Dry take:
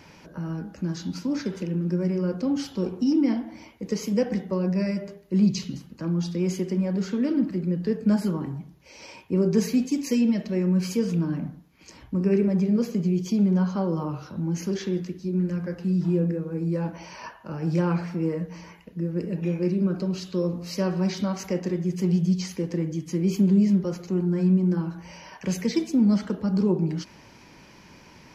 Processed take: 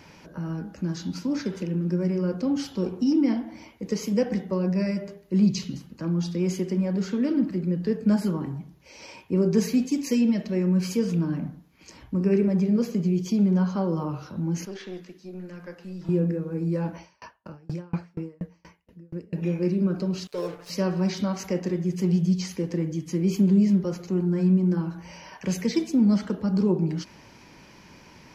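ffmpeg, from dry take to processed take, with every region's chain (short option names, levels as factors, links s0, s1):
-filter_complex "[0:a]asettb=1/sr,asplit=3[s0][s1][s2];[s0]atrim=end=14.654[s3];[s1]atrim=start=14.65:end=16.09,asetpts=PTS-STARTPTS,afade=t=in:d=0.004:c=qsin,afade=t=out:st=1.436:d=0.004:c=qsin,highpass=f=710:p=1,acrossover=split=4200[s4][s5];[s5]acompressor=threshold=0.00141:ratio=4:attack=1:release=60[s6];[s4][s6]amix=inputs=2:normalize=0,aeval=exprs='(tanh(20*val(0)+0.45)-tanh(0.45))/20':c=same[s7];[s2]atrim=start=16.086[s8];[s3][s7]acrossfade=d=0.004:c1=hsin:c2=qsin[s9];[s9][s8]acrossfade=d=0.004:c1=qsin:c2=hsin,asettb=1/sr,asplit=3[s10][s11][s12];[s10]atrim=end=16.984[s13];[s11]atrim=start=16.98:end=19.33,asetpts=PTS-STARTPTS,afade=t=in:d=0.004:c=qsin,afade=t=out:st=2.346:d=0.004:c=qsin,equalizer=f=76:w=2.2:g=7.5,aeval=exprs='val(0)*pow(10,-34*if(lt(mod(4.2*n/s,1),2*abs(4.2)/1000),1-mod(4.2*n/s,1)/(2*abs(4.2)/1000),(mod(4.2*n/s,1)-2*abs(4.2)/1000)/(1-2*abs(4.2)/1000))/20)':c=same[s14];[s12]atrim=start=19.326[s15];[s13][s14]acrossfade=d=0.004:c1=hsin:c2=qsin[s16];[s16][s15]acrossfade=d=0.004:c1=qsin:c2=hsin,asettb=1/sr,asplit=3[s17][s18][s19];[s17]atrim=end=20.274[s20];[s18]atrim=start=20.27:end=20.7,asetpts=PTS-STARTPTS,afade=t=in:d=0.004:c=qsin,afade=t=out:st=0.426:d=0.004:c=qsin,lowshelf=f=330:t=q:w=3:g=-11,aeval=exprs='sgn(val(0))*max(abs(val(0))-0.00668,0)':c=same,aecho=1:1:6.8:0.77,atrim=end_sample=18963[s21];[s19]atrim=start=20.696[s22];[s20][s21]acrossfade=d=0.004:c1=hsin:c2=qsin[s23];[s23][s22]acrossfade=d=0.004:c1=qsin:c2=hsin"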